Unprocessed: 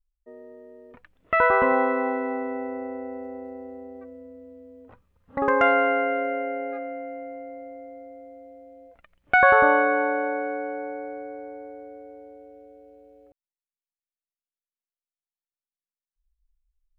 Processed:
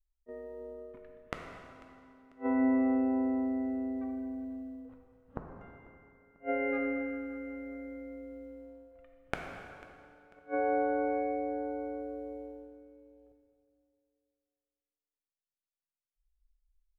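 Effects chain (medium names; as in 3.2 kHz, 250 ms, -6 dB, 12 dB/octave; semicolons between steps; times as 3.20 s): gate -46 dBFS, range -12 dB; bass shelf 150 Hz +9.5 dB; inverted gate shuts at -18 dBFS, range -39 dB; on a send: feedback delay 494 ms, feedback 36%, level -20.5 dB; on the sum: plate-style reverb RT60 2.1 s, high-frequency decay 0.85×, DRR 2 dB; trim -1.5 dB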